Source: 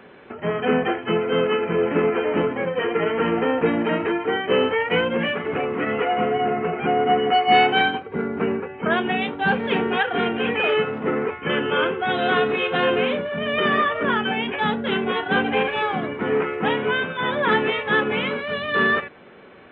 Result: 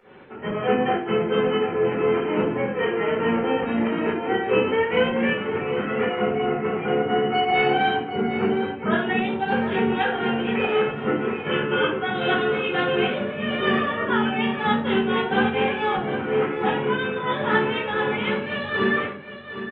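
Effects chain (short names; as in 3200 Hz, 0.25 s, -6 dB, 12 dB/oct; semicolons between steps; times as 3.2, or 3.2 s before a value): pump 124 bpm, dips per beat 2, -16 dB, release 0.131 s; on a send: echo 0.76 s -11 dB; on the sum: shoebox room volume 380 m³, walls furnished, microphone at 4.5 m; gain -8 dB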